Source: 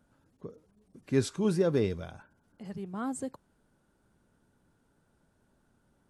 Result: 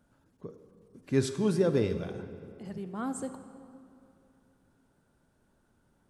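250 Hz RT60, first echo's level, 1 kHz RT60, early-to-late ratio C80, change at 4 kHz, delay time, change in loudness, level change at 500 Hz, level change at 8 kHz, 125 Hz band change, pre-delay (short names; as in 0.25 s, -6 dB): 2.9 s, none, 2.5 s, 11.0 dB, +0.5 dB, none, 0.0 dB, +0.5 dB, +0.5 dB, +1.0 dB, 26 ms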